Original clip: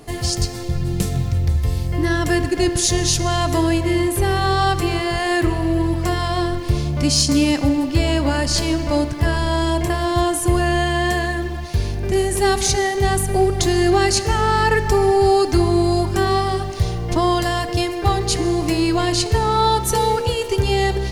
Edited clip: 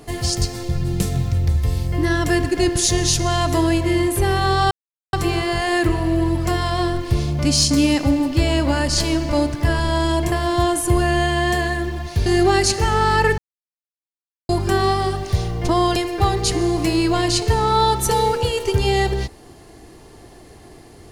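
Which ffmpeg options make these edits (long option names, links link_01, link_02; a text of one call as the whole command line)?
ffmpeg -i in.wav -filter_complex "[0:a]asplit=6[link_01][link_02][link_03][link_04][link_05][link_06];[link_01]atrim=end=4.71,asetpts=PTS-STARTPTS,afade=type=out:start_time=4.706:duration=0.004:curve=hsin,apad=pad_dur=0.42[link_07];[link_02]atrim=start=4.71:end=11.842,asetpts=PTS-STARTPTS,afade=type=in:duration=0.004:curve=hsin[link_08];[link_03]atrim=start=13.728:end=14.85,asetpts=PTS-STARTPTS,afade=type=out:start_time=1.118:duration=0.004:curve=hsin[link_09];[link_04]atrim=start=14.85:end=15.96,asetpts=PTS-STARTPTS,volume=0[link_10];[link_05]atrim=start=15.96:end=17.432,asetpts=PTS-STARTPTS,afade=type=in:duration=0.004:curve=hsin[link_11];[link_06]atrim=start=17.798[link_12];[link_07][link_08]concat=n=2:v=0:a=1[link_13];[link_09][link_10][link_11]concat=n=3:v=0:a=1[link_14];[link_13][link_14]acrossfade=duration=0.004:curve1=hsin:curve2=hsin[link_15];[link_15][link_12]acrossfade=duration=0.004:curve1=hsin:curve2=hsin" out.wav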